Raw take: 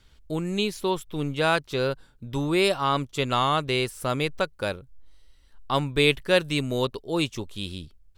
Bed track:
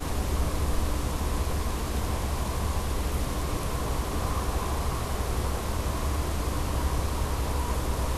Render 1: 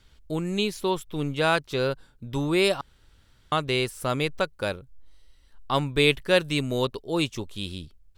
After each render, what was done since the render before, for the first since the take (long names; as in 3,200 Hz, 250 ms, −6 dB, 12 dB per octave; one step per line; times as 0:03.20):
0:02.81–0:03.52: fill with room tone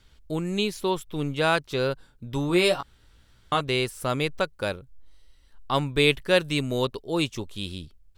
0:02.48–0:03.61: double-tracking delay 17 ms −6 dB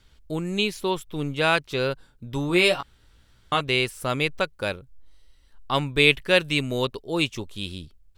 dynamic equaliser 2,500 Hz, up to +6 dB, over −38 dBFS, Q 1.4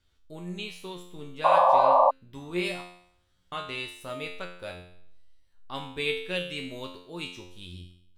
tuned comb filter 89 Hz, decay 0.66 s, harmonics all, mix 90%
0:01.44–0:02.11: sound drawn into the spectrogram noise 520–1,200 Hz −19 dBFS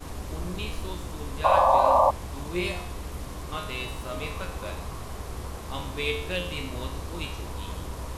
mix in bed track −7.5 dB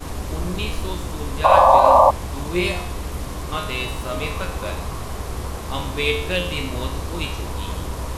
level +7.5 dB
brickwall limiter −1 dBFS, peak gain reduction 2.5 dB